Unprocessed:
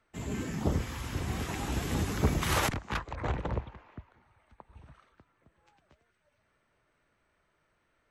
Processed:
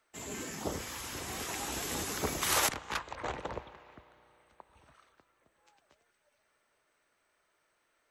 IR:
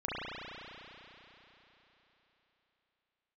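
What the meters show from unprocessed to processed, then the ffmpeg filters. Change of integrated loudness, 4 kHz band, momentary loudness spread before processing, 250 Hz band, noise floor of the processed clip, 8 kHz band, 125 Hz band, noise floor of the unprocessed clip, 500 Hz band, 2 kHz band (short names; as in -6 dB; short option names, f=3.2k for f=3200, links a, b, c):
-2.0 dB, +2.5 dB, 11 LU, -8.0 dB, -76 dBFS, +6.0 dB, -14.0 dB, -75 dBFS, -2.5 dB, -0.5 dB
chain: -filter_complex "[0:a]bass=f=250:g=-14,treble=f=4k:g=8,asplit=2[a][b];[1:a]atrim=start_sample=2205[c];[b][c]afir=irnorm=-1:irlink=0,volume=-24.5dB[d];[a][d]amix=inputs=2:normalize=0,volume=-1.5dB"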